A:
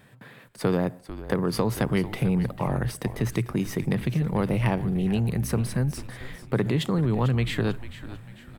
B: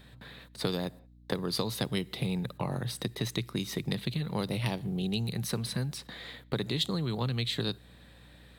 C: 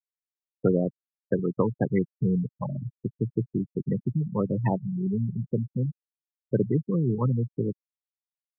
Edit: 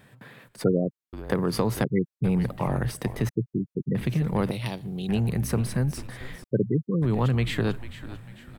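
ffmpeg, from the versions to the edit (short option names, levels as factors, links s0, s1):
-filter_complex "[2:a]asplit=4[s0][s1][s2][s3];[0:a]asplit=6[s4][s5][s6][s7][s8][s9];[s4]atrim=end=0.642[s10];[s0]atrim=start=0.638:end=1.132[s11];[s5]atrim=start=1.128:end=1.842[s12];[s1]atrim=start=1.838:end=2.242[s13];[s6]atrim=start=2.238:end=3.292[s14];[s2]atrim=start=3.288:end=3.952[s15];[s7]atrim=start=3.948:end=4.512[s16];[1:a]atrim=start=4.508:end=5.092[s17];[s8]atrim=start=5.088:end=6.442[s18];[s3]atrim=start=6.438:end=7.022[s19];[s9]atrim=start=7.018[s20];[s10][s11]acrossfade=d=0.004:c1=hsin:c2=hsin[s21];[s21][s12]acrossfade=d=0.004:c1=hsin:c2=hsin[s22];[s22][s13]acrossfade=d=0.004:c1=hsin:c2=hsin[s23];[s23][s14]acrossfade=d=0.004:c1=hsin:c2=hsin[s24];[s24][s15]acrossfade=d=0.004:c1=hsin:c2=hsin[s25];[s25][s16]acrossfade=d=0.004:c1=hsin:c2=hsin[s26];[s26][s17]acrossfade=d=0.004:c1=hsin:c2=hsin[s27];[s27][s18]acrossfade=d=0.004:c1=hsin:c2=hsin[s28];[s28][s19]acrossfade=d=0.004:c1=hsin:c2=hsin[s29];[s29][s20]acrossfade=d=0.004:c1=hsin:c2=hsin"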